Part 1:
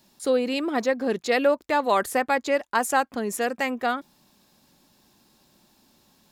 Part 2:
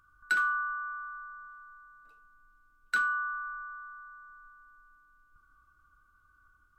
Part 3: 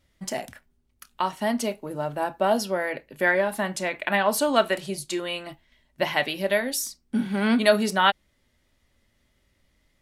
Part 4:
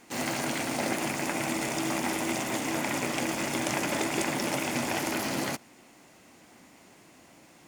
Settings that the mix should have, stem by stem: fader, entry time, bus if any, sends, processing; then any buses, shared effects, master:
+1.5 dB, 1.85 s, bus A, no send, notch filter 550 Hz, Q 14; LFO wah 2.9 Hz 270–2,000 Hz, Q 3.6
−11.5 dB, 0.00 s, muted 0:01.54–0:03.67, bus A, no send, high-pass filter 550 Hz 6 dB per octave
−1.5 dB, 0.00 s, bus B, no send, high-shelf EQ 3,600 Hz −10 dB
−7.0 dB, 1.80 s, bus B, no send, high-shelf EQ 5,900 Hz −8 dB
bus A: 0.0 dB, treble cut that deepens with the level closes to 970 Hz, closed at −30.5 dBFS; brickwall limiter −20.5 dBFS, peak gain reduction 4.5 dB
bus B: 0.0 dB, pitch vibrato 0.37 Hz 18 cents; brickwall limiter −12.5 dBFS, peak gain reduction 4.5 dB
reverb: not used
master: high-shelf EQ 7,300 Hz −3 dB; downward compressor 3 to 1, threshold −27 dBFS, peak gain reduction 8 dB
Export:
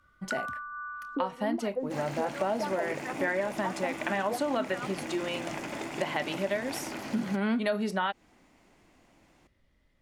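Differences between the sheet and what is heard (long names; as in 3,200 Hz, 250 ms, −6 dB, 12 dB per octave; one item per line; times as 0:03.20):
stem 1: entry 1.85 s → 0.90 s
stem 2 −11.5 dB → 0.0 dB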